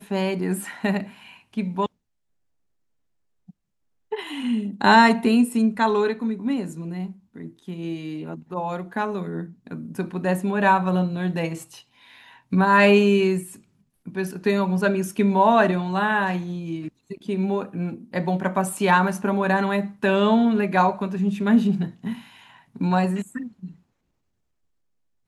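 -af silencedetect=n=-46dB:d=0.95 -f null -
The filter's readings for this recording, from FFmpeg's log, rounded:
silence_start: 1.87
silence_end: 3.49 | silence_duration: 1.62
silence_start: 23.76
silence_end: 25.27 | silence_duration: 1.51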